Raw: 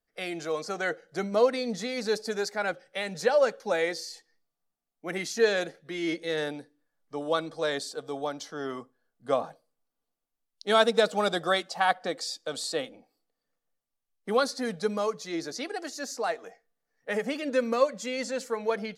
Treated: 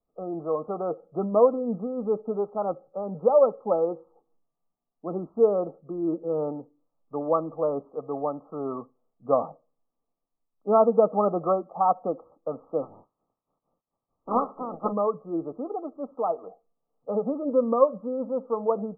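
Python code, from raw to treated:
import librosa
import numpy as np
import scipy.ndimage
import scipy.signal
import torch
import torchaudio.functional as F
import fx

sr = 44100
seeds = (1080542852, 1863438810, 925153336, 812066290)

y = fx.dynamic_eq(x, sr, hz=720.0, q=1.2, threshold_db=-38.0, ratio=4.0, max_db=-3, at=(1.54, 2.31))
y = fx.spec_clip(y, sr, under_db=29, at=(12.81, 14.91), fade=0.02)
y = fx.wiener(y, sr, points=9)
y = scipy.signal.sosfilt(scipy.signal.cheby1(10, 1.0, 1300.0, 'lowpass', fs=sr, output='sos'), y)
y = F.gain(torch.from_numpy(y), 4.5).numpy()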